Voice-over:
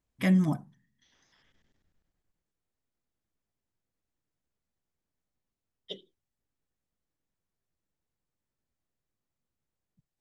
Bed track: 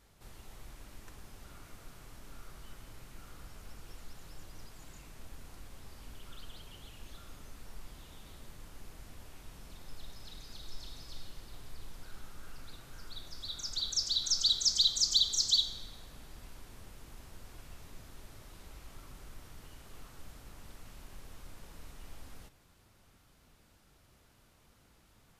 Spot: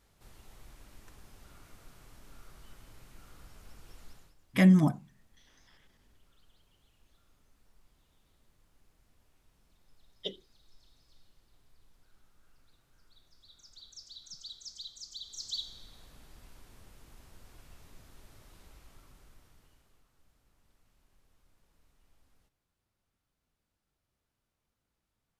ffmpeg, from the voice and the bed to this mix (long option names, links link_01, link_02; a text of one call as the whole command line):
ffmpeg -i stem1.wav -i stem2.wav -filter_complex "[0:a]adelay=4350,volume=3dB[link_01];[1:a]volume=10dB,afade=type=out:start_time=4.1:duration=0.25:silence=0.188365,afade=type=in:start_time=15.19:duration=0.85:silence=0.211349,afade=type=out:start_time=18.57:duration=1.46:silence=0.177828[link_02];[link_01][link_02]amix=inputs=2:normalize=0" out.wav